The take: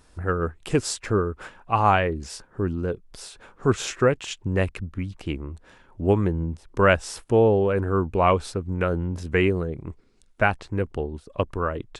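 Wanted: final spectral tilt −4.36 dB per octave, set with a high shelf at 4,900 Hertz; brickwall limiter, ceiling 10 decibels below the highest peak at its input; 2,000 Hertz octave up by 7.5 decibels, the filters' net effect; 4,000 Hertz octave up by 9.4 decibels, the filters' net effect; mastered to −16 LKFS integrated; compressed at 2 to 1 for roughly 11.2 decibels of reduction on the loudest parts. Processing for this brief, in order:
parametric band 2,000 Hz +7.5 dB
parametric band 4,000 Hz +6.5 dB
high-shelf EQ 4,900 Hz +7.5 dB
downward compressor 2 to 1, threshold −31 dBFS
level +16.5 dB
brickwall limiter −3.5 dBFS

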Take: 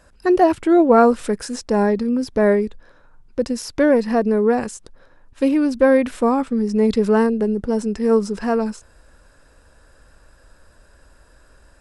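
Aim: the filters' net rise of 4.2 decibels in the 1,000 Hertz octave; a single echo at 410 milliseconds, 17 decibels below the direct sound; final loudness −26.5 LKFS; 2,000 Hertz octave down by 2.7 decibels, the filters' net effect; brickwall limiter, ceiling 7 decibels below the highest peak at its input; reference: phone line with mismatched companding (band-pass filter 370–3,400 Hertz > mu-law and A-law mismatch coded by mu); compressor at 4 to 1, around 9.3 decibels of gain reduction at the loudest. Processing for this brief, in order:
parametric band 1,000 Hz +8 dB
parametric band 2,000 Hz −7 dB
downward compressor 4 to 1, threshold −17 dBFS
brickwall limiter −14.5 dBFS
band-pass filter 370–3,400 Hz
single-tap delay 410 ms −17 dB
mu-law and A-law mismatch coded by mu

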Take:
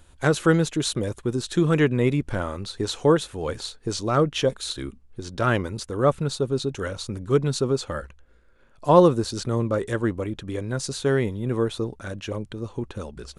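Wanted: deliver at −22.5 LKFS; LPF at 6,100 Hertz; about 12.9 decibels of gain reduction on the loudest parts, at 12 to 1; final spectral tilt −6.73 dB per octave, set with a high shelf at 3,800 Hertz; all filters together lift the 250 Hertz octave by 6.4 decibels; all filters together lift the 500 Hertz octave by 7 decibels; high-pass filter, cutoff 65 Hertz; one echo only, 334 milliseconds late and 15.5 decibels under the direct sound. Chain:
high-pass filter 65 Hz
low-pass filter 6,100 Hz
parametric band 250 Hz +6.5 dB
parametric band 500 Hz +6.5 dB
high-shelf EQ 3,800 Hz −7 dB
downward compressor 12 to 1, threshold −15 dBFS
single-tap delay 334 ms −15.5 dB
level +1 dB

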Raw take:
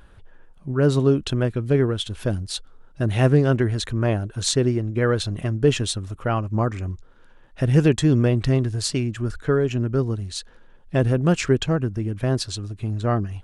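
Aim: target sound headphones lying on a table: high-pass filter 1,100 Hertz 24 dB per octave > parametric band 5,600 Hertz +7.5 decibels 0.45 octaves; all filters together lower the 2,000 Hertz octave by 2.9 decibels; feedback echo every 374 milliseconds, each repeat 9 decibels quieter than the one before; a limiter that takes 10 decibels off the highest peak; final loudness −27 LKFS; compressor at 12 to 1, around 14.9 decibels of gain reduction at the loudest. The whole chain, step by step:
parametric band 2,000 Hz −4 dB
downward compressor 12 to 1, threshold −27 dBFS
brickwall limiter −26.5 dBFS
high-pass filter 1,100 Hz 24 dB per octave
parametric band 5,600 Hz +7.5 dB 0.45 octaves
repeating echo 374 ms, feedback 35%, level −9 dB
level +14 dB

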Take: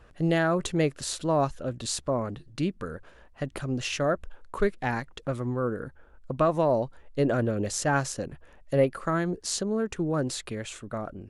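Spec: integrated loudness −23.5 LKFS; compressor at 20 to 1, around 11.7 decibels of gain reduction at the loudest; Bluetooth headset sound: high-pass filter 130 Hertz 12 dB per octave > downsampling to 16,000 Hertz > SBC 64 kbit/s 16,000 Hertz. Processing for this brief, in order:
downward compressor 20 to 1, threshold −29 dBFS
high-pass filter 130 Hz 12 dB per octave
downsampling to 16,000 Hz
level +12.5 dB
SBC 64 kbit/s 16,000 Hz

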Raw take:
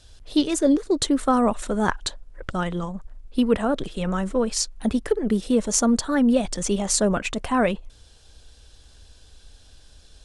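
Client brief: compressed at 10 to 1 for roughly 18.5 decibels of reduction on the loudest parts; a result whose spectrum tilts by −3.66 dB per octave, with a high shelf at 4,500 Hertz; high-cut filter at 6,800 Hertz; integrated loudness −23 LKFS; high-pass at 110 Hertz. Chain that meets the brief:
high-pass filter 110 Hz
low-pass filter 6,800 Hz
high-shelf EQ 4,500 Hz +7 dB
downward compressor 10 to 1, threshold −34 dBFS
level +15 dB

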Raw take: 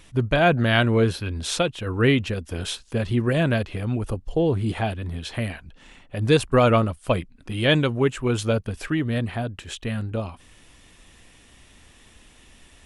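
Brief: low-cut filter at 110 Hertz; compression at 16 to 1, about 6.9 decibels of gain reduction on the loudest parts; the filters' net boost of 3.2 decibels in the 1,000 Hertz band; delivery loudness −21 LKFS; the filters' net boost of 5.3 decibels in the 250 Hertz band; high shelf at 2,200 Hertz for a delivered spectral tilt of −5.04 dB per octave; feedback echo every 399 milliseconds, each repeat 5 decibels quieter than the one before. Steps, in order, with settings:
high-pass filter 110 Hz
parametric band 250 Hz +6.5 dB
parametric band 1,000 Hz +3.5 dB
high-shelf EQ 2,200 Hz +3.5 dB
downward compressor 16 to 1, threshold −16 dBFS
repeating echo 399 ms, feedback 56%, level −5 dB
level +2 dB

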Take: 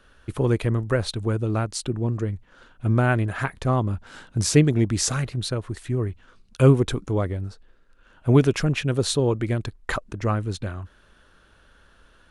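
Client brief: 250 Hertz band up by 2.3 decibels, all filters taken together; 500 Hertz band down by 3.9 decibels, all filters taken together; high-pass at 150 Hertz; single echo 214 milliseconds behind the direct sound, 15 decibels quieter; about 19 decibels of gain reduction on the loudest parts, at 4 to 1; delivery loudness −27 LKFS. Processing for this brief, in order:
high-pass filter 150 Hz
parametric band 250 Hz +6 dB
parametric band 500 Hz −7.5 dB
downward compressor 4 to 1, threshold −34 dBFS
single-tap delay 214 ms −15 dB
level +10.5 dB

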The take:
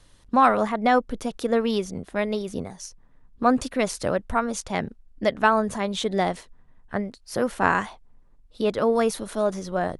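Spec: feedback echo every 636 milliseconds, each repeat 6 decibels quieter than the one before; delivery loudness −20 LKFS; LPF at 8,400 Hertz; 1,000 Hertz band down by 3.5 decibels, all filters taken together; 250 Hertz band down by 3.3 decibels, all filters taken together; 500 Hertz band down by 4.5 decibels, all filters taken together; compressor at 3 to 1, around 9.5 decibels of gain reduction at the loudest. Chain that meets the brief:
low-pass filter 8,400 Hz
parametric band 250 Hz −3 dB
parametric band 500 Hz −4 dB
parametric band 1,000 Hz −3 dB
downward compressor 3 to 1, threshold −29 dBFS
repeating echo 636 ms, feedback 50%, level −6 dB
level +13 dB

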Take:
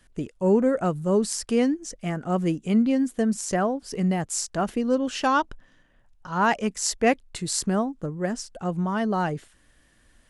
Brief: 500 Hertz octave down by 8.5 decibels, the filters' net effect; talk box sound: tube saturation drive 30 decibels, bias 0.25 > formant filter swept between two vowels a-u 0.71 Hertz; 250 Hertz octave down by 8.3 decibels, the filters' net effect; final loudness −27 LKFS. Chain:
parametric band 250 Hz −9 dB
parametric band 500 Hz −8 dB
tube saturation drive 30 dB, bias 0.25
formant filter swept between two vowels a-u 0.71 Hz
level +22 dB

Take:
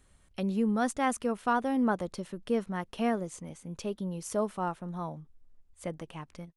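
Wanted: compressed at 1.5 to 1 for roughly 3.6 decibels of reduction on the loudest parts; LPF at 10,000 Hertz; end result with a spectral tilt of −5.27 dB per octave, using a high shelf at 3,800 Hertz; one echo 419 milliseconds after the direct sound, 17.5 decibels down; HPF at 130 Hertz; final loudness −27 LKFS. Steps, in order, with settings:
high-pass filter 130 Hz
low-pass filter 10,000 Hz
high-shelf EQ 3,800 Hz +3 dB
downward compressor 1.5 to 1, threshold −33 dBFS
single-tap delay 419 ms −17.5 dB
level +8.5 dB

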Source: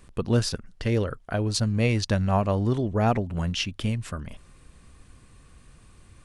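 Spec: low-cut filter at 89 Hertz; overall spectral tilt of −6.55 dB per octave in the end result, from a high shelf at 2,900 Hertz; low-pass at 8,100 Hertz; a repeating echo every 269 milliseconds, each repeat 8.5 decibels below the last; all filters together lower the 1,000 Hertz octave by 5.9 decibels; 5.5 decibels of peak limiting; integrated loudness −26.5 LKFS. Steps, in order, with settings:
high-pass filter 89 Hz
low-pass filter 8,100 Hz
parametric band 1,000 Hz −8 dB
high-shelf EQ 2,900 Hz −7 dB
brickwall limiter −18 dBFS
repeating echo 269 ms, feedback 38%, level −8.5 dB
level +2.5 dB

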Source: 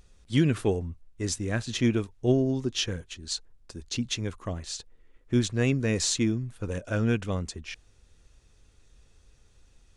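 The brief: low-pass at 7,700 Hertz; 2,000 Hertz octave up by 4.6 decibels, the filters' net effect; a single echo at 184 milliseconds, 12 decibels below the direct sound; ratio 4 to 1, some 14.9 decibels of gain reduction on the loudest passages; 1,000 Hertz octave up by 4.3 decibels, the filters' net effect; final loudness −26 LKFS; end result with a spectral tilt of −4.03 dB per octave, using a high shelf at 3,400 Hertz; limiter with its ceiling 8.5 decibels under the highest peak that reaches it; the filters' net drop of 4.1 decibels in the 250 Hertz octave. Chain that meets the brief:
low-pass filter 7,700 Hz
parametric band 250 Hz −5.5 dB
parametric band 1,000 Hz +5 dB
parametric band 2,000 Hz +3 dB
high-shelf EQ 3,400 Hz +5 dB
downward compressor 4 to 1, threshold −39 dBFS
brickwall limiter −31 dBFS
single-tap delay 184 ms −12 dB
level +16.5 dB

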